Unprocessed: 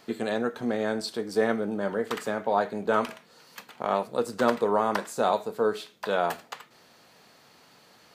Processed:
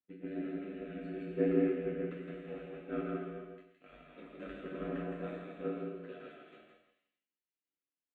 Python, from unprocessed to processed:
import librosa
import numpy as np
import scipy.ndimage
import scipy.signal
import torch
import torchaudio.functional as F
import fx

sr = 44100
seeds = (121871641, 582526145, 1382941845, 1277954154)

y = fx.rattle_buzz(x, sr, strikes_db=-42.0, level_db=-30.0)
y = scipy.signal.sosfilt(scipy.signal.butter(2, 2800.0, 'lowpass', fs=sr, output='sos'), y)
y = fx.peak_eq(y, sr, hz=310.0, db=12.0, octaves=0.39)
y = fx.transient(y, sr, attack_db=5, sustain_db=-4)
y = fx.fixed_phaser(y, sr, hz=2200.0, stages=4)
y = fx.resonator_bank(y, sr, root=57, chord='minor', decay_s=0.3)
y = y * np.sin(2.0 * np.pi * 46.0 * np.arange(len(y)) / sr)
y = fx.echo_feedback(y, sr, ms=166, feedback_pct=31, wet_db=-3.0)
y = fx.rev_gated(y, sr, seeds[0], gate_ms=490, shape='flat', drr_db=-1.5)
y = fx.band_widen(y, sr, depth_pct=100)